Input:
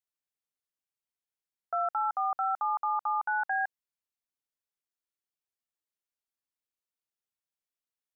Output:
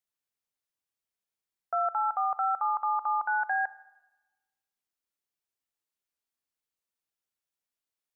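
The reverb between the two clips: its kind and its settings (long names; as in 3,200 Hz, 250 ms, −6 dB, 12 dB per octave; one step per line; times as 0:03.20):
four-comb reverb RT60 1.1 s, combs from 29 ms, DRR 17 dB
level +1.5 dB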